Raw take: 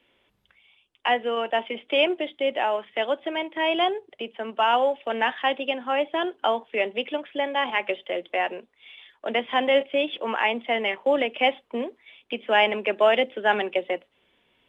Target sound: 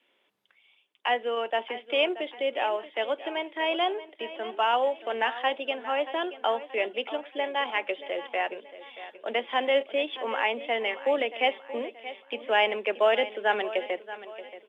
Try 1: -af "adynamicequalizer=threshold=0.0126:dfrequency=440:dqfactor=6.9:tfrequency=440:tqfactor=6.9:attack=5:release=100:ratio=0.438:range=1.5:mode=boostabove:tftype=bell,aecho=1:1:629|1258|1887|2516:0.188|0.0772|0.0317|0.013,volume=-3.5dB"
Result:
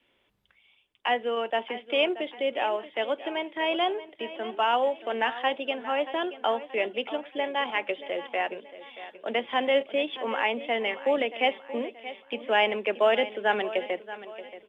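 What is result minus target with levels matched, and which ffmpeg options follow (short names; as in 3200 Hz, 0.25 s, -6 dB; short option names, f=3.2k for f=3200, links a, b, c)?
250 Hz band +3.0 dB
-af "adynamicequalizer=threshold=0.0126:dfrequency=440:dqfactor=6.9:tfrequency=440:tqfactor=6.9:attack=5:release=100:ratio=0.438:range=1.5:mode=boostabove:tftype=bell,highpass=300,aecho=1:1:629|1258|1887|2516:0.188|0.0772|0.0317|0.013,volume=-3.5dB"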